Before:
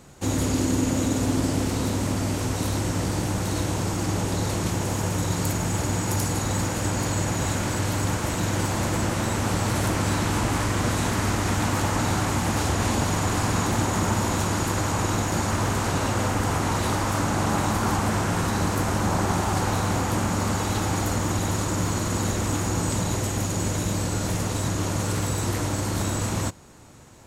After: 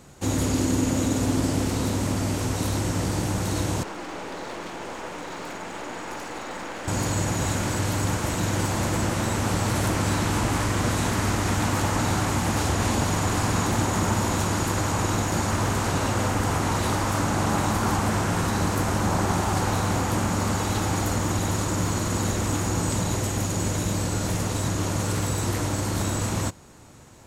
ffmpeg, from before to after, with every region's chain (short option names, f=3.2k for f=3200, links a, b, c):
-filter_complex "[0:a]asettb=1/sr,asplit=3[a][b][c];[a]atrim=end=3.834[d];[b]atrim=start=3.83:end=6.88,asetpts=PTS-STARTPTS,afade=t=in:d=0.004:c=qsin,afade=t=out:st=3.046:d=0.004:c=qsin,highpass=260,lowpass=2.3k,aemphasis=mode=production:type=bsi,aeval=exprs='clip(val(0),-1,0.0126)':c=same[e];[c]atrim=start=6.876[f];[d][e]acrossfade=d=0.004:c1=hsin:c2=qsin[g];[g][f]acrossfade=d=0.004:c1=qsin:c2=hsin"